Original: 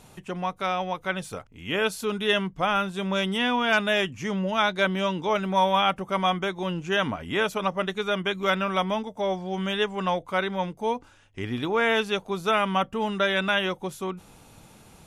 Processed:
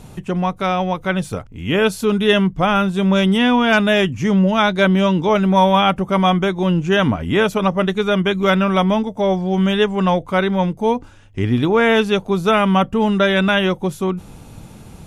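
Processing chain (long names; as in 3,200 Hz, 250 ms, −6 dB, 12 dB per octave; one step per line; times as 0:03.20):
low-shelf EQ 360 Hz +11 dB
level +5.5 dB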